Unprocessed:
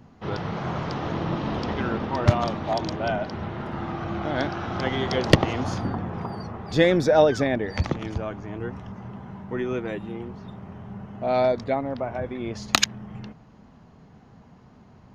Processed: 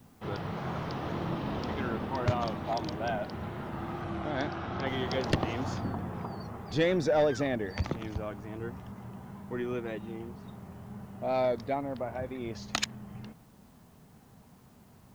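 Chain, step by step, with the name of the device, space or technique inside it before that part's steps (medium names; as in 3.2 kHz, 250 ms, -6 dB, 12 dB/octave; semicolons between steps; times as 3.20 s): compact cassette (saturation -12 dBFS, distortion -13 dB; low-pass 9 kHz; wow and flutter; white noise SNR 35 dB); 4.01–4.85 s: low-pass 12 kHz -> 4.7 kHz 12 dB/octave; trim -6 dB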